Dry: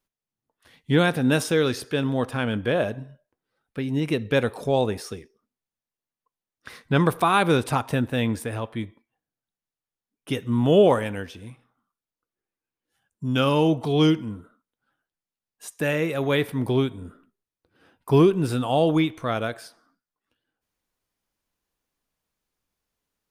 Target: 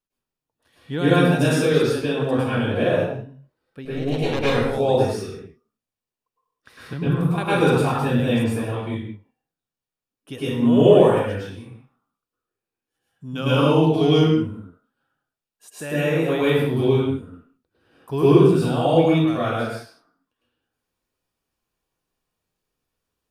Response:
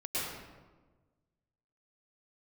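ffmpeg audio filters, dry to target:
-filter_complex "[0:a]bandreject=f=2.1k:w=13,asettb=1/sr,asplit=3[a][b][c];[a]atrim=end=3.854[d];[b]atrim=start=3.85:end=4.46,asetpts=PTS-STARTPTS,afade=t=in:d=0.004:c=qsin,afade=t=out:st=0.606:d=0.004:c=qsin,aeval=exprs='0.316*(cos(1*acos(clip(val(0)/0.316,-1,1)))-cos(1*PI/2))+0.0501*(cos(3*acos(clip(val(0)/0.316,-1,1)))-cos(3*PI/2))+0.0794*(cos(4*acos(clip(val(0)/0.316,-1,1)))-cos(4*PI/2))':c=same[e];[c]atrim=start=4.456[f];[d][e]acrossfade=d=0.004:c1=hsin:c2=qsin[g];[g][f]acrossfade=d=0.004:c1=qsin:c2=hsin,asettb=1/sr,asplit=3[h][i][j];[h]atrim=end=6.934[k];[i]atrim=start=6.93:end=7.38,asetpts=PTS-STARTPTS,afade=t=in:d=0.004:c=qsin,afade=t=out:st=0.446:d=0.004:c=qsin,acrossover=split=250[l][m];[m]acompressor=threshold=-33dB:ratio=6[n];[l][n]amix=inputs=2:normalize=0[o];[j]atrim=start=7.376[p];[k][o]acrossfade=d=0.004:c1=hsin:c2=qsin[q];[q][p]acrossfade=d=0.004:c1=qsin:c2=hsin[r];[1:a]atrim=start_sample=2205,afade=t=out:st=0.38:d=0.01,atrim=end_sample=17199[s];[r][s]afir=irnorm=-1:irlink=0,volume=-2.5dB"

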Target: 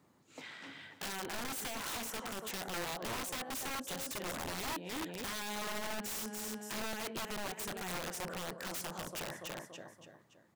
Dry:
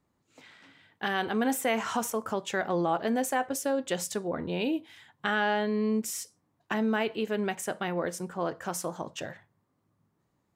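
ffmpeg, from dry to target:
-filter_complex "[0:a]tremolo=f=1.1:d=0.33,asplit=2[a][b];[b]aecho=0:1:285|570|855|1140:0.224|0.094|0.0395|0.0166[c];[a][c]amix=inputs=2:normalize=0,acompressor=threshold=-44dB:ratio=5,highpass=120,asplit=2[d][e];[e]alimiter=level_in=14dB:limit=-24dB:level=0:latency=1:release=15,volume=-14dB,volume=1.5dB[f];[d][f]amix=inputs=2:normalize=0,aeval=exprs='(mod(59.6*val(0)+1,2)-1)/59.6':c=same,volume=1.5dB"

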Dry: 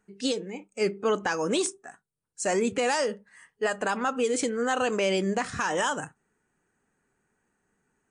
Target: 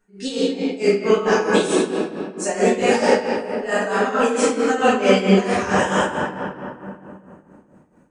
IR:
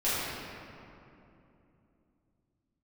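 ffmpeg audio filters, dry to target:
-filter_complex "[1:a]atrim=start_sample=2205[a];[0:a][a]afir=irnorm=-1:irlink=0,tremolo=f=4.5:d=0.71"

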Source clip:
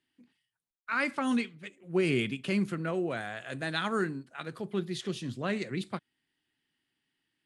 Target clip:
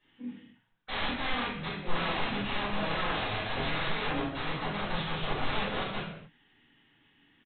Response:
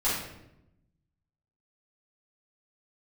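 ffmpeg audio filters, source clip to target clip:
-filter_complex "[0:a]acompressor=threshold=-45dB:ratio=4,aresample=8000,aeval=exprs='(mod(168*val(0)+1,2)-1)/168':c=same,aresample=44100[a];[1:a]atrim=start_sample=2205,afade=t=out:st=0.36:d=0.01,atrim=end_sample=16317[b];[a][b]afir=irnorm=-1:irlink=0,volume=7dB"

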